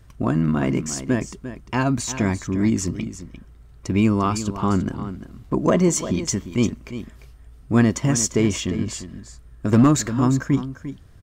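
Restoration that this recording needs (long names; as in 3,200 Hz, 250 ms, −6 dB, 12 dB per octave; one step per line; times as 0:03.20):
clipped peaks rebuilt −8 dBFS
echo removal 348 ms −12 dB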